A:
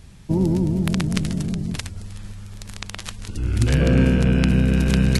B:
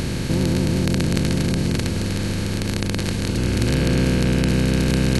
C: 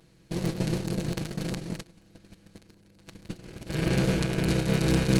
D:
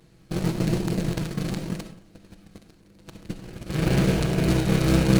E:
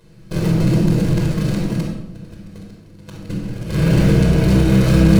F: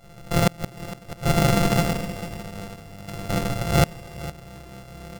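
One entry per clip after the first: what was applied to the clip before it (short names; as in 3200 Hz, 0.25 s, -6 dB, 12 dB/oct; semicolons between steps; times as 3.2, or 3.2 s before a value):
per-bin compression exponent 0.2; gain -6 dB
minimum comb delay 6.1 ms; dark delay 0.26 s, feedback 51%, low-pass 600 Hz, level -16.5 dB; gate -19 dBFS, range -30 dB; gain -3 dB
reverb RT60 0.55 s, pre-delay 20 ms, DRR 7 dB; in parallel at -4.5 dB: decimation with a swept rate 32×, swing 100% 0.88 Hz
shoebox room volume 2400 m³, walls furnished, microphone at 5.1 m; in parallel at +0.5 dB: limiter -12.5 dBFS, peak gain reduction 13.5 dB; on the sum: gain -4.5 dB
sample sorter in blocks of 64 samples; flipped gate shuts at -8 dBFS, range -29 dB; echo 0.459 s -15.5 dB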